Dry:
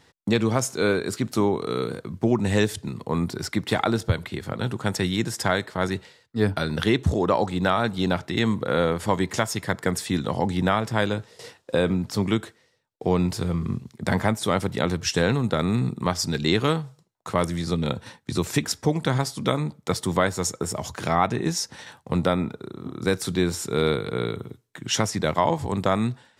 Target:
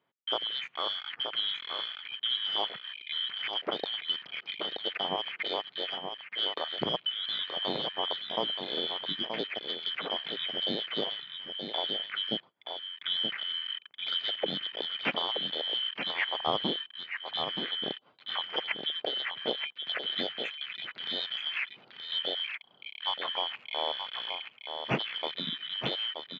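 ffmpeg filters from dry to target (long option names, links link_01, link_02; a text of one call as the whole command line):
ffmpeg -i in.wav -filter_complex "[0:a]afftfilt=real='real(if(lt(b,272),68*(eq(floor(b/68),0)*2+eq(floor(b/68),1)*3+eq(floor(b/68),2)*0+eq(floor(b/68),3)*1)+mod(b,68),b),0)':imag='imag(if(lt(b,272),68*(eq(floor(b/68),0)*2+eq(floor(b/68),1)*3+eq(floor(b/68),2)*0+eq(floor(b/68),3)*1)+mod(b,68),b),0)':win_size=2048:overlap=0.75,highpass=frequency=140:width=0.5412,highpass=frequency=140:width=1.3066,afwtdn=0.0224,lowpass=frequency=2200:width=0.5412,lowpass=frequency=2200:width=1.3066,lowshelf=frequency=220:gain=11.5,asplit=2[link_01][link_02];[link_02]alimiter=limit=-22.5dB:level=0:latency=1:release=463,volume=-1dB[link_03];[link_01][link_03]amix=inputs=2:normalize=0,aecho=1:1:926:0.473,volume=-3dB" out.wav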